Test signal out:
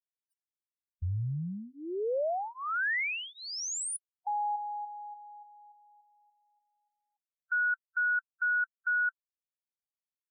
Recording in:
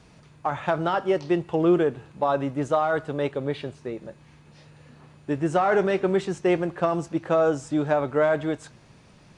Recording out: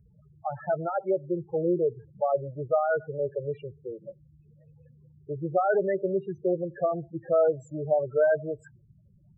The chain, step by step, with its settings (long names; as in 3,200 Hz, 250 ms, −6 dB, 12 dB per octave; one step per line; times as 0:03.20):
spectral peaks only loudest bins 8
phaser with its sweep stopped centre 990 Hz, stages 6